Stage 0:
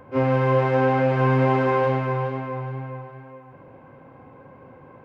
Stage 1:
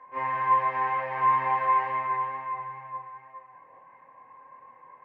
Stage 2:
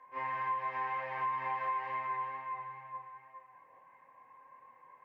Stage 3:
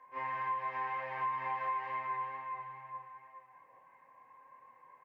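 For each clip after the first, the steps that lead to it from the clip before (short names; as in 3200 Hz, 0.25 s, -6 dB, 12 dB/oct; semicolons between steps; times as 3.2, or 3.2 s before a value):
double band-pass 1400 Hz, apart 0.78 oct; chorus voices 6, 0.62 Hz, delay 25 ms, depth 1.2 ms; gain +7.5 dB
high shelf 2700 Hz +10 dB; compressor, threshold -23 dBFS, peak gain reduction 7 dB; gain -8.5 dB
echo 0.748 s -22 dB; gain -1 dB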